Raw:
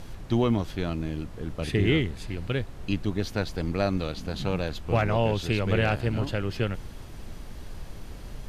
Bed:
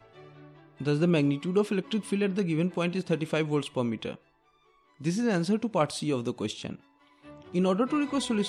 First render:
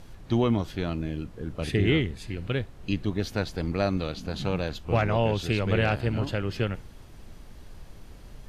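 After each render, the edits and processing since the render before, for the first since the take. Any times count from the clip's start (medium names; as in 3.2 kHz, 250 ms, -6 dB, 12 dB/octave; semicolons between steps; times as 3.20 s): noise print and reduce 6 dB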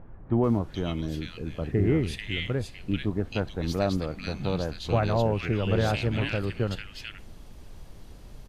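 bands offset in time lows, highs 440 ms, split 1.7 kHz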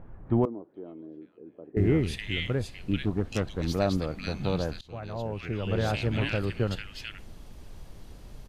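0.45–1.77 s: ladder band-pass 420 Hz, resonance 40%; 3.05–3.67 s: self-modulated delay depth 0.2 ms; 4.81–6.26 s: fade in, from -22.5 dB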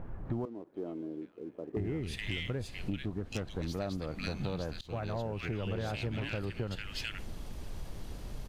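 compression 12:1, threshold -35 dBFS, peak gain reduction 16.5 dB; waveshaping leveller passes 1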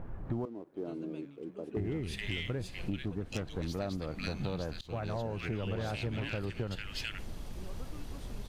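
add bed -26 dB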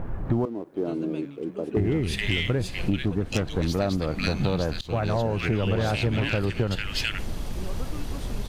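trim +11 dB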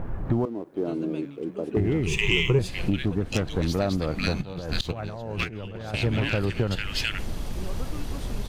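2.06–2.59 s: rippled EQ curve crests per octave 0.73, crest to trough 16 dB; 4.41–5.94 s: compressor with a negative ratio -30 dBFS, ratio -0.5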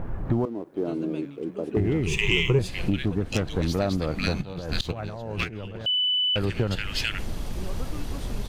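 5.86–6.36 s: bleep 2.99 kHz -20.5 dBFS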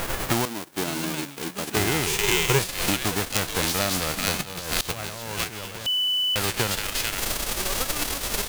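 formants flattened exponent 0.3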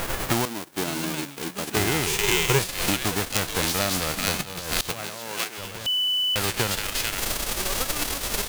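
4.89–5.57 s: high-pass 110 Hz -> 350 Hz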